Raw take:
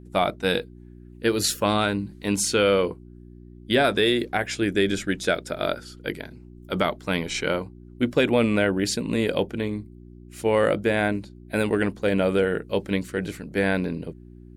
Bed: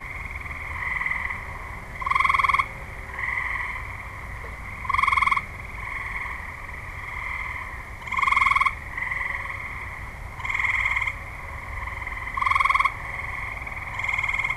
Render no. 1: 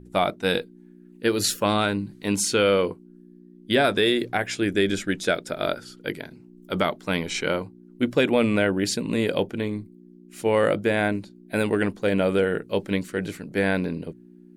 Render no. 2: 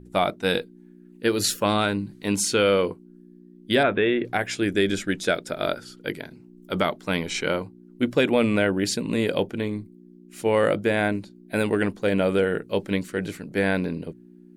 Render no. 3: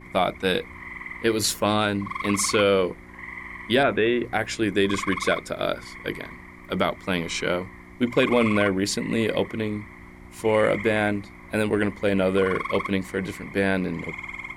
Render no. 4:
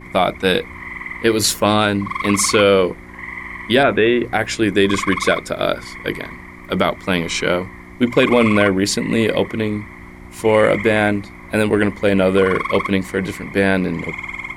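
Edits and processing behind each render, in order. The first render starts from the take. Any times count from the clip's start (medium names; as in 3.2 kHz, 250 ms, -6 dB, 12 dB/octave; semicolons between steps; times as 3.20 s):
de-hum 60 Hz, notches 2
3.83–4.25 s: steep low-pass 2.9 kHz
add bed -10.5 dB
trim +7 dB; peak limiter -3 dBFS, peak gain reduction 2 dB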